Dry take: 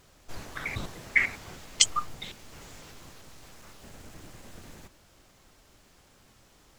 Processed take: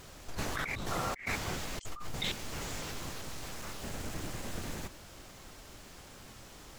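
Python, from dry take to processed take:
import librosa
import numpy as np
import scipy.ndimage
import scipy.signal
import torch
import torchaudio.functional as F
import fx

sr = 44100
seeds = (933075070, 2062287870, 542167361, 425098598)

y = fx.spec_repair(x, sr, seeds[0], start_s=0.93, length_s=0.27, low_hz=450.0, high_hz=1400.0, source='after')
y = fx.over_compress(y, sr, threshold_db=-40.0, ratio=-1.0)
y = F.gain(torch.from_numpy(y), 2.5).numpy()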